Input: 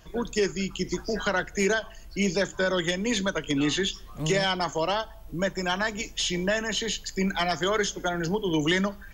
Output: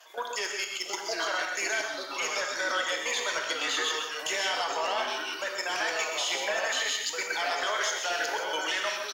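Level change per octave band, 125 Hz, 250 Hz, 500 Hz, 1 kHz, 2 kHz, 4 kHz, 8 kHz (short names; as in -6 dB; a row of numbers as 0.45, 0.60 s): under -30 dB, -19.0 dB, -6.5 dB, 0.0 dB, +0.5 dB, +0.5 dB, +1.5 dB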